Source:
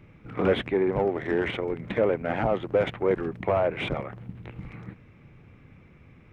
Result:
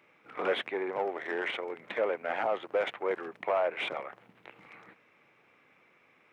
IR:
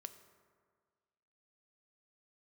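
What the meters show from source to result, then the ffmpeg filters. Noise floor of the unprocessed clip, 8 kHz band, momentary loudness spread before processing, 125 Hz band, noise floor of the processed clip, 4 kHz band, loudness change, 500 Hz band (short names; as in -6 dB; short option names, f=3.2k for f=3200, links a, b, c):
-54 dBFS, n/a, 17 LU, under -25 dB, -65 dBFS, -1.5 dB, -6.0 dB, -6.5 dB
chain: -af "highpass=600,volume=-1.5dB"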